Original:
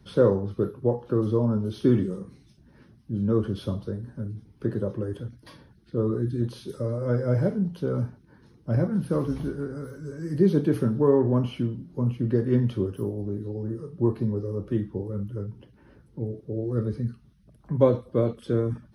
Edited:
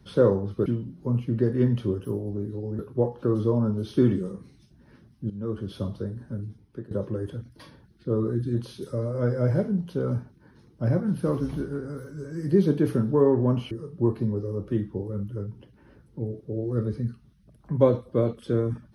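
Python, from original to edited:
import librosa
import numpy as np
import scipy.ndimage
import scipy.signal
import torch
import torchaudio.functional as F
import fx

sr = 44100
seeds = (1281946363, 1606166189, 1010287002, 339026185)

y = fx.edit(x, sr, fx.fade_in_from(start_s=3.17, length_s=0.65, floor_db=-14.0),
    fx.fade_out_to(start_s=4.33, length_s=0.45, floor_db=-20.0),
    fx.move(start_s=11.58, length_s=2.13, to_s=0.66), tone=tone)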